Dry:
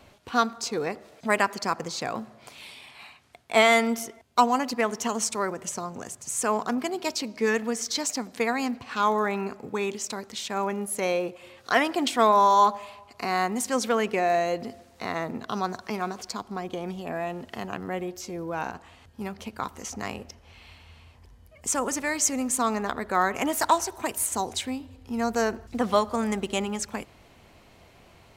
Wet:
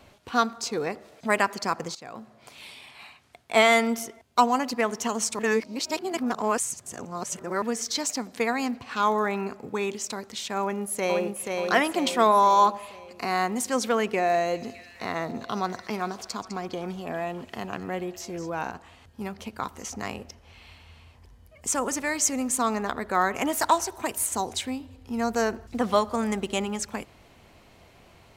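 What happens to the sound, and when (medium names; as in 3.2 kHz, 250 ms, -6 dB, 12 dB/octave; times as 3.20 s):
1.95–2.66 s: fade in, from -17 dB
5.39–7.62 s: reverse
10.61–11.55 s: echo throw 480 ms, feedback 50%, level -3.5 dB
14.08–18.50 s: repeats whose band climbs or falls 204 ms, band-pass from 6 kHz, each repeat -0.7 oct, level -9 dB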